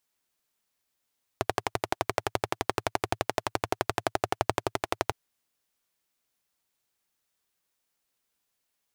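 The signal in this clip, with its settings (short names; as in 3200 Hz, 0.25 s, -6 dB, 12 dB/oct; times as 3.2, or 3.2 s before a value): single-cylinder engine model, steady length 3.71 s, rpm 1400, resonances 110/390/660 Hz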